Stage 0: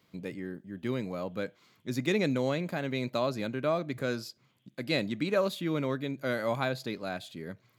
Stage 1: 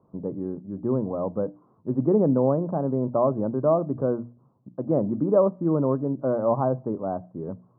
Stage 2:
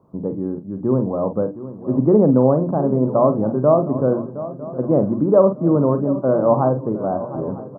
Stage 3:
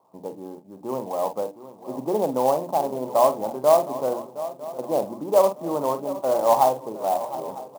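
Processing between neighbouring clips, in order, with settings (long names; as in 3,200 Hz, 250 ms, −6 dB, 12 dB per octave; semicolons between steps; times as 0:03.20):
Butterworth low-pass 1,100 Hz 48 dB per octave; mains-hum notches 60/120/180/240/300 Hz; level +8.5 dB
double-tracking delay 47 ms −10 dB; feedback echo with a long and a short gap by turns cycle 953 ms, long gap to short 3 to 1, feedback 38%, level −14.5 dB; level +6 dB
resonant band-pass 840 Hz, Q 3.6; converter with an unsteady clock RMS 0.025 ms; level +5.5 dB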